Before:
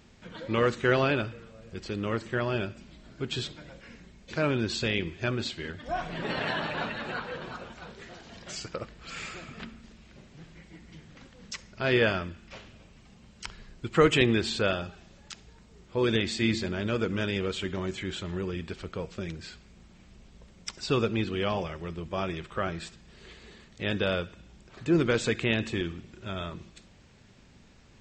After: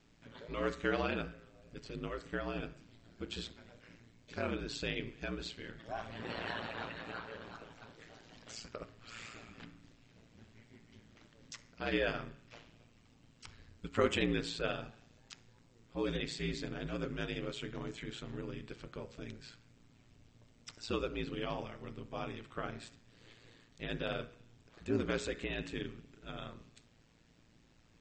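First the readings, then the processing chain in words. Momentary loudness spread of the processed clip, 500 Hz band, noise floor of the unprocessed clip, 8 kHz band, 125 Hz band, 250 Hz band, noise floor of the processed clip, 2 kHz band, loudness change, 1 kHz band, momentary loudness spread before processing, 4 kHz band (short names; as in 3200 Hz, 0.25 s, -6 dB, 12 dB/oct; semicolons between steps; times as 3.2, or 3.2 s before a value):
21 LU, -10.0 dB, -56 dBFS, -9.5 dB, -11.5 dB, -10.0 dB, -66 dBFS, -10.0 dB, -10.0 dB, -9.5 dB, 20 LU, -10.0 dB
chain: ring modulator 57 Hz; de-hum 69.29 Hz, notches 34; gain -6.5 dB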